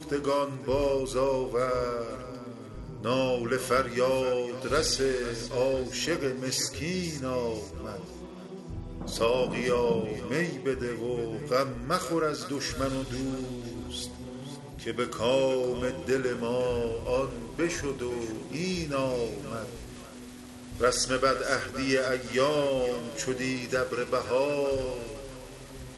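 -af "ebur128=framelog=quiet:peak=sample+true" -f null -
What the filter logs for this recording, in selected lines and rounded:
Integrated loudness:
  I:         -29.3 LUFS
  Threshold: -39.8 LUFS
Loudness range:
  LRA:         4.3 LU
  Threshold: -49.8 LUFS
  LRA low:   -32.2 LUFS
  LRA high:  -27.9 LUFS
Sample peak:
  Peak:      -11.9 dBFS
True peak:
  Peak:      -11.8 dBFS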